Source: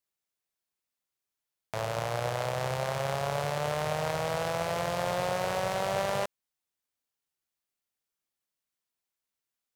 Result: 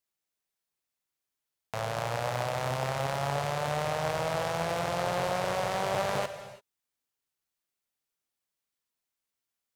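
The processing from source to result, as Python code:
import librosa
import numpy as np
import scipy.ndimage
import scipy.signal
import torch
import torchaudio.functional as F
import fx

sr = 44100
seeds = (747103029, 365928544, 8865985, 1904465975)

y = fx.rev_gated(x, sr, seeds[0], gate_ms=360, shape='flat', drr_db=9.5)
y = fx.doppler_dist(y, sr, depth_ms=0.41)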